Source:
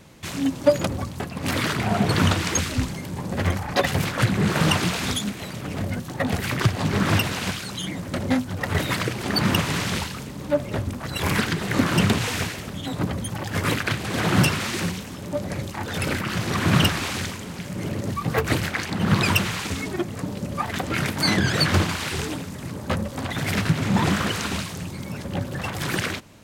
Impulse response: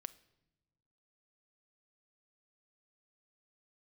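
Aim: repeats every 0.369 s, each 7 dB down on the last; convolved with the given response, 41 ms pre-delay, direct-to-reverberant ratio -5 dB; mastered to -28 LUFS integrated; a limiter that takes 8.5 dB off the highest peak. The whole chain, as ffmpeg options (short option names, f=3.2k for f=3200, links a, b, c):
-filter_complex "[0:a]alimiter=limit=-13dB:level=0:latency=1,aecho=1:1:369|738|1107|1476|1845:0.447|0.201|0.0905|0.0407|0.0183,asplit=2[a][b];[1:a]atrim=start_sample=2205,adelay=41[c];[b][c]afir=irnorm=-1:irlink=0,volume=9.5dB[d];[a][d]amix=inputs=2:normalize=0,volume=-9.5dB"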